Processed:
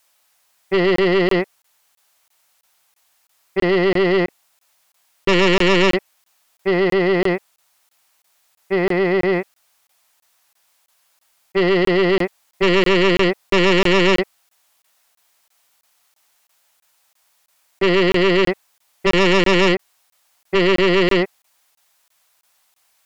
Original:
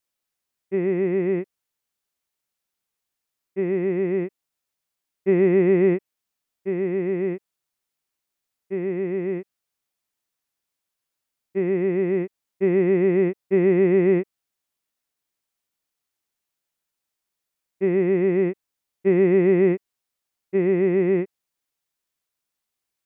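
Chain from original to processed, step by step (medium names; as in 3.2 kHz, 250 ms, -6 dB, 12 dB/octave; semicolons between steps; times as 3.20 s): resonant low shelf 500 Hz -10.5 dB, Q 1.5; sine folder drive 11 dB, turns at -17 dBFS; crackling interface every 0.33 s, samples 1024, zero, from 0.96 s; trim +6 dB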